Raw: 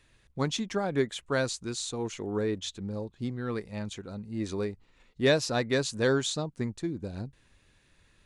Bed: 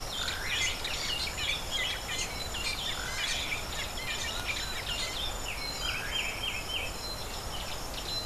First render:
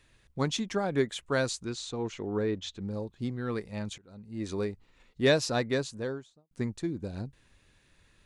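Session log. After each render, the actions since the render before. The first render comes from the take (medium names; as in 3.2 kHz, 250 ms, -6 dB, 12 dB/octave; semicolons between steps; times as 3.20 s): 1.65–2.81 s: distance through air 89 m; 3.98–4.58 s: fade in, from -23.5 dB; 5.47–6.51 s: studio fade out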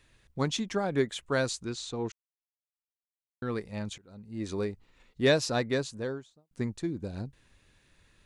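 2.12–3.42 s: mute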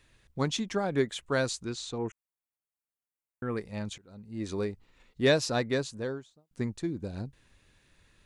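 1.98–3.57 s: Butterworth band-stop 4.4 kHz, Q 0.95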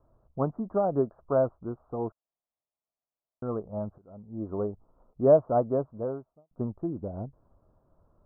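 steep low-pass 1.3 kHz 72 dB/octave; peaking EQ 650 Hz +11 dB 0.44 oct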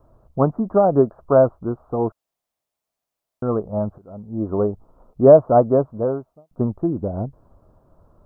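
trim +10.5 dB; peak limiter -1 dBFS, peak gain reduction 2 dB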